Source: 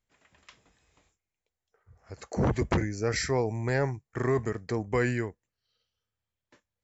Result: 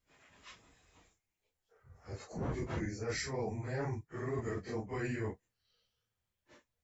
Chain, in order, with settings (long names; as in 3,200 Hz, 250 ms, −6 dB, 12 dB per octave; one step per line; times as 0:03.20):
random phases in long frames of 100 ms
reversed playback
downward compressor 6 to 1, threshold −36 dBFS, peak gain reduction 15 dB
reversed playback
level +1 dB